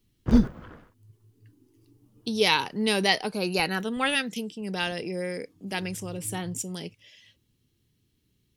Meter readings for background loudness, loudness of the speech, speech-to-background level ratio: -24.0 LUFS, -27.5 LUFS, -3.5 dB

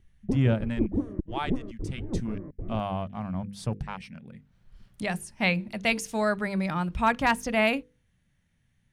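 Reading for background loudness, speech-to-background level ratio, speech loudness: -34.5 LUFS, 5.5 dB, -29.0 LUFS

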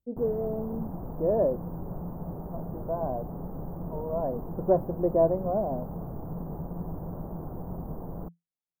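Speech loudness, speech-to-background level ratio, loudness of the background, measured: -29.5 LUFS, 9.0 dB, -38.5 LUFS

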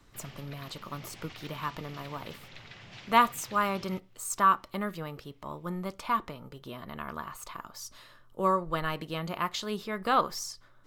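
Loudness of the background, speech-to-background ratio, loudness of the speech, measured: -48.5 LUFS, 17.0 dB, -31.5 LUFS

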